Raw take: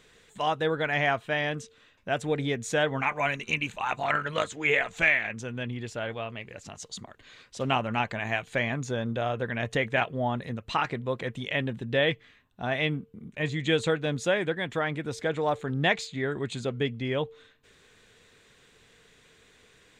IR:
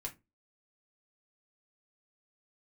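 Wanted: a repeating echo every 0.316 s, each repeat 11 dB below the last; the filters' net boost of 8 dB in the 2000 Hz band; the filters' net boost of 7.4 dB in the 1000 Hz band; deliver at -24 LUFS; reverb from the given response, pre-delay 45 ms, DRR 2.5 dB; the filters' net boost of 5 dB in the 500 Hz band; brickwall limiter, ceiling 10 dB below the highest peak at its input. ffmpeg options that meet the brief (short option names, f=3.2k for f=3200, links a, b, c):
-filter_complex "[0:a]equalizer=f=500:t=o:g=3.5,equalizer=f=1k:t=o:g=7,equalizer=f=2k:t=o:g=7.5,alimiter=limit=-10.5dB:level=0:latency=1,aecho=1:1:316|632|948:0.282|0.0789|0.0221,asplit=2[a][b];[1:a]atrim=start_sample=2205,adelay=45[c];[b][c]afir=irnorm=-1:irlink=0,volume=-1dB[d];[a][d]amix=inputs=2:normalize=0,volume=-2dB"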